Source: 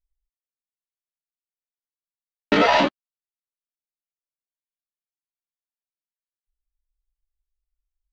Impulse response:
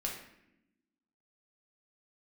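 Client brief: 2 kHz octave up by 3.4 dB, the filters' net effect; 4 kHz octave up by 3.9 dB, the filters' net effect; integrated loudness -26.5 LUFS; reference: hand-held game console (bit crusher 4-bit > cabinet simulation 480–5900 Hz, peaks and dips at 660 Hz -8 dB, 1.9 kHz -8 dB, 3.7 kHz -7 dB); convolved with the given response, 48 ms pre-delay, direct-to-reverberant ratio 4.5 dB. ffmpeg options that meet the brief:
-filter_complex "[0:a]equalizer=f=2000:t=o:g=8,equalizer=f=4000:t=o:g=6.5,asplit=2[s0][s1];[1:a]atrim=start_sample=2205,adelay=48[s2];[s1][s2]afir=irnorm=-1:irlink=0,volume=0.473[s3];[s0][s3]amix=inputs=2:normalize=0,acrusher=bits=3:mix=0:aa=0.000001,highpass=480,equalizer=f=660:t=q:w=4:g=-8,equalizer=f=1900:t=q:w=4:g=-8,equalizer=f=3700:t=q:w=4:g=-7,lowpass=f=5900:w=0.5412,lowpass=f=5900:w=1.3066,volume=0.355"

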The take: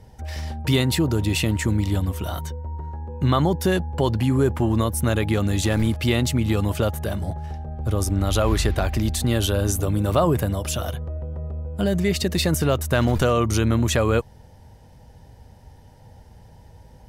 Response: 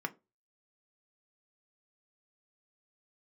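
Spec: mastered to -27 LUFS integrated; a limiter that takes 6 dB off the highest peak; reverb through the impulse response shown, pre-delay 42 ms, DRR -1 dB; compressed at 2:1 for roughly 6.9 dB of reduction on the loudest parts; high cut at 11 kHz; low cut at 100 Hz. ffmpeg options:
-filter_complex "[0:a]highpass=100,lowpass=11000,acompressor=threshold=0.0398:ratio=2,alimiter=limit=0.126:level=0:latency=1,asplit=2[s0][s1];[1:a]atrim=start_sample=2205,adelay=42[s2];[s1][s2]afir=irnorm=-1:irlink=0,volume=0.794[s3];[s0][s3]amix=inputs=2:normalize=0"

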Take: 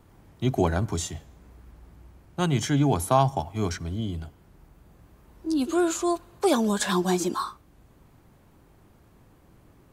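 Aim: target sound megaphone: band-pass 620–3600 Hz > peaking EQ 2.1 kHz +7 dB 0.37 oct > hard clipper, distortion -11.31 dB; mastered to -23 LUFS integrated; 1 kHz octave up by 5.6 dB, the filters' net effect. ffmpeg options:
-af "highpass=620,lowpass=3600,equalizer=f=1000:t=o:g=8,equalizer=f=2100:t=o:w=0.37:g=7,asoftclip=type=hard:threshold=0.2,volume=1.68"

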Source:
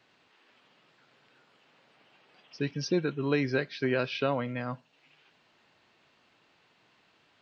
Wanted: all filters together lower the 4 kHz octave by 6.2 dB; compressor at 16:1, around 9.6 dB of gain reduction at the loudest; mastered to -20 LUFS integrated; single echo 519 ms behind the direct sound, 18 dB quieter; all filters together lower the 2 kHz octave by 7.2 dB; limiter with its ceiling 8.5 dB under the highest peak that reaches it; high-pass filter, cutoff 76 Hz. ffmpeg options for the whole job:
-af "highpass=76,equalizer=f=2000:t=o:g=-8.5,equalizer=f=4000:t=o:g=-5.5,acompressor=threshold=0.0251:ratio=16,alimiter=level_in=2.24:limit=0.0631:level=0:latency=1,volume=0.447,aecho=1:1:519:0.126,volume=11.2"

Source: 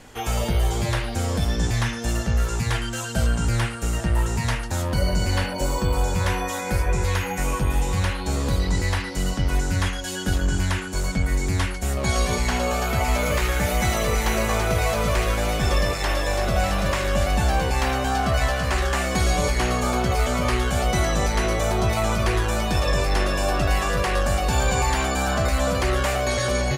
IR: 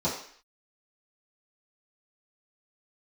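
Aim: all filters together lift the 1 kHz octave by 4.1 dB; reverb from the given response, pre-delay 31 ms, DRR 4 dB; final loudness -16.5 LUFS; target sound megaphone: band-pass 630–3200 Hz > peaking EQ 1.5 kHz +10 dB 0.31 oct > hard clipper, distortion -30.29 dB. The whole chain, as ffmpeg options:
-filter_complex "[0:a]equalizer=f=1000:t=o:g=5,asplit=2[s0][s1];[1:a]atrim=start_sample=2205,adelay=31[s2];[s1][s2]afir=irnorm=-1:irlink=0,volume=0.2[s3];[s0][s3]amix=inputs=2:normalize=0,highpass=630,lowpass=3200,equalizer=f=1500:t=o:w=0.31:g=10,asoftclip=type=hard:threshold=0.251,volume=2"

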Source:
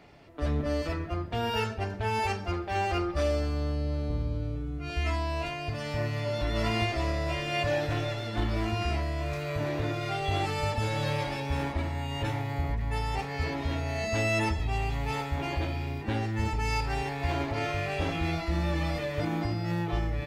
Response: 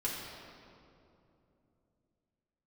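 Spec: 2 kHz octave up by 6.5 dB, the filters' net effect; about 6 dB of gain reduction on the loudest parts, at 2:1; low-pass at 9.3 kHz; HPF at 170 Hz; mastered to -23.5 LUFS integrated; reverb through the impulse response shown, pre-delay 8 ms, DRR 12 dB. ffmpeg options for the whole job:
-filter_complex "[0:a]highpass=170,lowpass=9300,equalizer=f=2000:t=o:g=8,acompressor=threshold=0.0224:ratio=2,asplit=2[s0][s1];[1:a]atrim=start_sample=2205,adelay=8[s2];[s1][s2]afir=irnorm=-1:irlink=0,volume=0.15[s3];[s0][s3]amix=inputs=2:normalize=0,volume=3.16"

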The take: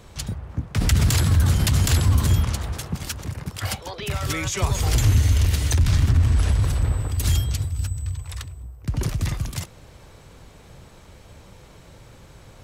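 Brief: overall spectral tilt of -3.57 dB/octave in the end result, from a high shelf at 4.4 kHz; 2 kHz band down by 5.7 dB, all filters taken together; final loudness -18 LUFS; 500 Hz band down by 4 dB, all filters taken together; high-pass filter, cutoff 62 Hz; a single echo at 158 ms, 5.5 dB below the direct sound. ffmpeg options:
-af "highpass=62,equalizer=f=500:t=o:g=-5,equalizer=f=2000:t=o:g=-9,highshelf=f=4400:g=8.5,aecho=1:1:158:0.531,volume=1.5"

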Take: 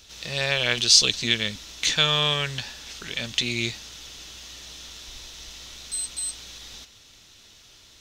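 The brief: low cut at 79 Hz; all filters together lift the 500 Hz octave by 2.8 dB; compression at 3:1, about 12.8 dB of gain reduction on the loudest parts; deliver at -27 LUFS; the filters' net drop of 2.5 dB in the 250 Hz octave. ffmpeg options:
-af "highpass=79,equalizer=f=250:t=o:g=-5,equalizer=f=500:t=o:g=4.5,acompressor=threshold=0.0355:ratio=3,volume=1.78"

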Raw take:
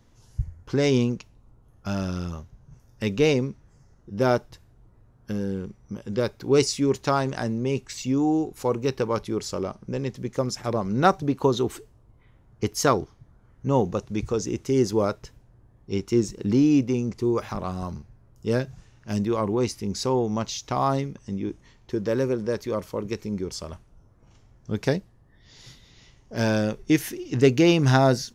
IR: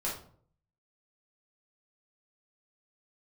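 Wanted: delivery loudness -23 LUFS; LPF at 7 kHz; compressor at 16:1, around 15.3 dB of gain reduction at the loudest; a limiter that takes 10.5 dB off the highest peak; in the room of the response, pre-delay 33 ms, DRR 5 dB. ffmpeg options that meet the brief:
-filter_complex "[0:a]lowpass=7000,acompressor=threshold=0.0447:ratio=16,alimiter=level_in=1.5:limit=0.0631:level=0:latency=1,volume=0.668,asplit=2[s0][s1];[1:a]atrim=start_sample=2205,adelay=33[s2];[s1][s2]afir=irnorm=-1:irlink=0,volume=0.335[s3];[s0][s3]amix=inputs=2:normalize=0,volume=4.73"

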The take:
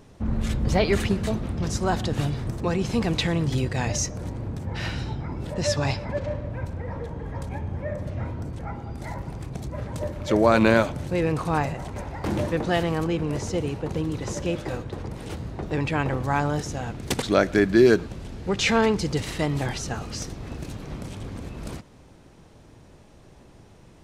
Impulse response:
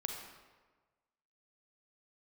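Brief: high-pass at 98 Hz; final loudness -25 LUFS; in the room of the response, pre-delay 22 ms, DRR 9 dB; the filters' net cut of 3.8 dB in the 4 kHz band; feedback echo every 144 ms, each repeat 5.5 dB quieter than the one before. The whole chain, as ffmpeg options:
-filter_complex "[0:a]highpass=98,equalizer=f=4000:t=o:g=-5,aecho=1:1:144|288|432|576|720|864|1008:0.531|0.281|0.149|0.079|0.0419|0.0222|0.0118,asplit=2[s0][s1];[1:a]atrim=start_sample=2205,adelay=22[s2];[s1][s2]afir=irnorm=-1:irlink=0,volume=0.335[s3];[s0][s3]amix=inputs=2:normalize=0,volume=0.944"

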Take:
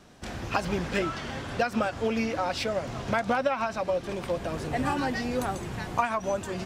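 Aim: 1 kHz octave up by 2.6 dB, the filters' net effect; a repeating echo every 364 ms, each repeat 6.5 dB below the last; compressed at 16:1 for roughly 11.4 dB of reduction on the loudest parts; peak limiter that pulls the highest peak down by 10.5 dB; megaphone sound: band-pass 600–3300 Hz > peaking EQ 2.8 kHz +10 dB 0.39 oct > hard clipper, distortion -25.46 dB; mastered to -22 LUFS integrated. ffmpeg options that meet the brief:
-af "equalizer=f=1000:t=o:g=4.5,acompressor=threshold=0.0355:ratio=16,alimiter=level_in=1.41:limit=0.0631:level=0:latency=1,volume=0.708,highpass=600,lowpass=3300,equalizer=f=2800:t=o:w=0.39:g=10,aecho=1:1:364|728|1092|1456|1820|2184:0.473|0.222|0.105|0.0491|0.0231|0.0109,asoftclip=type=hard:threshold=0.0335,volume=5.96"

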